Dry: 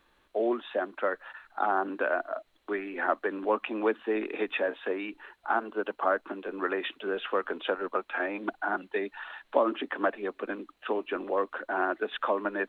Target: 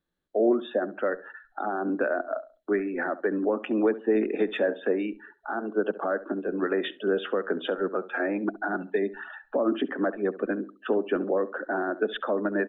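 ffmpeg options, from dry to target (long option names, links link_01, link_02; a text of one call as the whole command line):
ffmpeg -i in.wav -filter_complex "[0:a]alimiter=limit=-20.5dB:level=0:latency=1:release=93,afftdn=noise_reduction=23:noise_floor=-44,acontrast=81,equalizer=frequency=160:width_type=o:width=0.67:gain=11,equalizer=frequency=1000:width_type=o:width=0.67:gain=-11,equalizer=frequency=2500:width_type=o:width=0.67:gain=-10,asplit=2[link_01][link_02];[link_02]adelay=69,lowpass=frequency=1400:poles=1,volume=-15dB,asplit=2[link_03][link_04];[link_04]adelay=69,lowpass=frequency=1400:poles=1,volume=0.31,asplit=2[link_05][link_06];[link_06]adelay=69,lowpass=frequency=1400:poles=1,volume=0.31[link_07];[link_01][link_03][link_05][link_07]amix=inputs=4:normalize=0" out.wav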